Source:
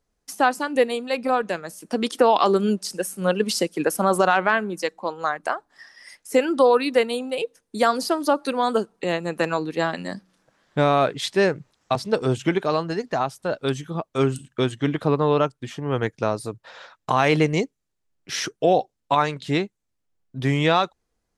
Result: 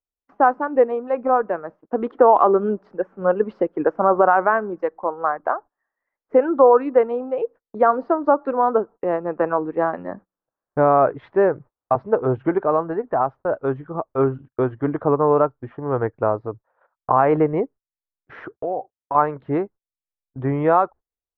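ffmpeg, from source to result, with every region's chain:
ffmpeg -i in.wav -filter_complex "[0:a]asettb=1/sr,asplit=3[link_01][link_02][link_03];[link_01]atrim=end=18.444[link_04];[link_02]atrim=start=18.44:end=19.15,asetpts=PTS-STARTPTS,afade=type=in:duration=0.004:curve=qsin,afade=type=out:start_time=0.706:duration=0.004:curve=qsin,highpass=44,acompressor=threshold=-30dB:ratio=2.5:attack=3.2:release=140:knee=1:detection=peak[link_05];[link_03]atrim=start=19.146[link_06];[link_04][link_05]acrossfade=duration=0.004:curve1=hsin:curve2=qsin[link_07];[link_07][link_06]acrossfade=duration=0.004:curve1=qsin:curve2=hsin,agate=range=-26dB:threshold=-39dB:ratio=16:detection=peak,lowpass=frequency=1300:width=0.5412,lowpass=frequency=1300:width=1.3066,equalizer=frequency=180:width=1.2:gain=-10,volume=5dB" out.wav

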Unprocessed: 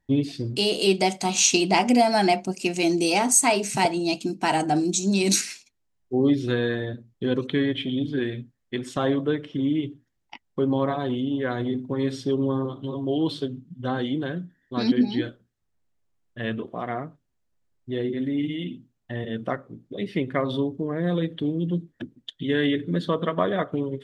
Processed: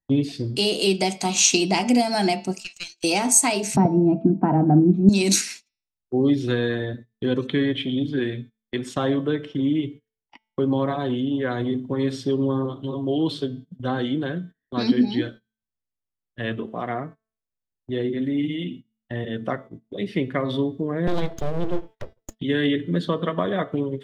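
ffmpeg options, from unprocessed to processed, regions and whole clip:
ffmpeg -i in.wav -filter_complex "[0:a]asettb=1/sr,asplit=3[link_01][link_02][link_03];[link_01]atrim=end=2.604[link_04];[link_02]atrim=start=2.6:end=3.04,asetpts=PTS-STARTPTS,afade=type=in:duration=0.004:curve=qsin,afade=type=out:start_time=0.436:duration=0.004:curve=qsin,asuperpass=centerf=4600:order=4:qfactor=0.96,aeval=exprs='(tanh(7.94*val(0)+0.75)-tanh(0.75))/7.94':channel_layout=same[link_05];[link_03]atrim=start=3.036[link_06];[link_04][link_05]acrossfade=duration=0.004:curve1=hsin:curve2=qsin[link_07];[link_07][link_06]acrossfade=duration=0.004:curve1=qsin:curve2=hsin,asettb=1/sr,asplit=3[link_08][link_09][link_10];[link_08]atrim=end=3.764[link_11];[link_09]atrim=start=3.76:end=5.09,asetpts=PTS-STARTPTS,afade=type=in:duration=0.004:curve=qsin,afade=type=out:start_time=1.326:duration=0.004:curve=qsin,lowpass=frequency=1300:width=0.5412,lowpass=frequency=1300:width=1.3066,equalizer=frequency=160:width=0.5:gain=12[link_12];[link_10]atrim=start=5.086[link_13];[link_11][link_12]acrossfade=duration=0.004:curve1=hsin:curve2=qsin[link_14];[link_14][link_13]acrossfade=duration=0.004:curve1=qsin:curve2=hsin,asettb=1/sr,asplit=3[link_15][link_16][link_17];[link_15]atrim=end=21.074[link_18];[link_16]atrim=start=21.07:end=22.39,asetpts=PTS-STARTPTS,afade=type=in:duration=0.004:curve=qsin,afade=type=out:start_time=1.316:duration=0.004:curve=qsin,equalizer=frequency=180:width=2:gain=3,aeval=exprs='abs(val(0))':channel_layout=same[link_19];[link_17]atrim=start=22.386[link_20];[link_18][link_19]acrossfade=duration=0.004:curve1=hsin:curve2=qsin[link_21];[link_21][link_20]acrossfade=duration=0.004:curve1=qsin:curve2=hsin,bandreject=frequency=220.7:width_type=h:width=4,bandreject=frequency=441.4:width_type=h:width=4,bandreject=frequency=662.1:width_type=h:width=4,bandreject=frequency=882.8:width_type=h:width=4,bandreject=frequency=1103.5:width_type=h:width=4,bandreject=frequency=1324.2:width_type=h:width=4,bandreject=frequency=1544.9:width_type=h:width=4,bandreject=frequency=1765.6:width_type=h:width=4,bandreject=frequency=1986.3:width_type=h:width=4,bandreject=frequency=2207:width_type=h:width=4,bandreject=frequency=2427.7:width_type=h:width=4,bandreject=frequency=2648.4:width_type=h:width=4,bandreject=frequency=2869.1:width_type=h:width=4,bandreject=frequency=3089.8:width_type=h:width=4,bandreject=frequency=3310.5:width_type=h:width=4,bandreject=frequency=3531.2:width_type=h:width=4,bandreject=frequency=3751.9:width_type=h:width=4,bandreject=frequency=3972.6:width_type=h:width=4,bandreject=frequency=4193.3:width_type=h:width=4,bandreject=frequency=4414:width_type=h:width=4,bandreject=frequency=4634.7:width_type=h:width=4,bandreject=frequency=4855.4:width_type=h:width=4,bandreject=frequency=5076.1:width_type=h:width=4,bandreject=frequency=5296.8:width_type=h:width=4,bandreject=frequency=5517.5:width_type=h:width=4,bandreject=frequency=5738.2:width_type=h:width=4,agate=range=-18dB:threshold=-40dB:ratio=16:detection=peak,acrossover=split=290|3000[link_22][link_23][link_24];[link_23]acompressor=threshold=-23dB:ratio=6[link_25];[link_22][link_25][link_24]amix=inputs=3:normalize=0,volume=2dB" out.wav

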